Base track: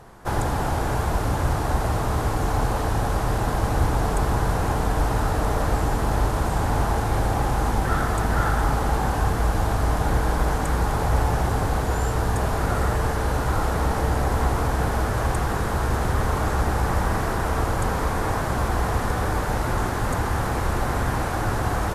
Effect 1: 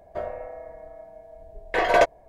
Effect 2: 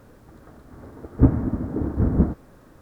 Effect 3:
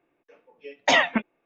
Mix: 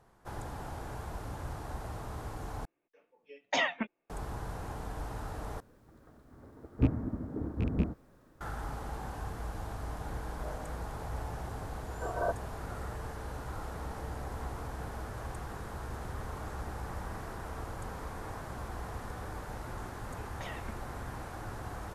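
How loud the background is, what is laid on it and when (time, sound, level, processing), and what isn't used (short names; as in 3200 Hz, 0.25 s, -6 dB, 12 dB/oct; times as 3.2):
base track -17.5 dB
2.65 replace with 3 -10.5 dB
5.6 replace with 2 -11 dB + rattling part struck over -16 dBFS, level -23 dBFS
10.27 add 1 -14.5 dB + brick-wall FIR low-pass 1600 Hz
19.53 add 3 -14 dB + compressor, threshold -28 dBFS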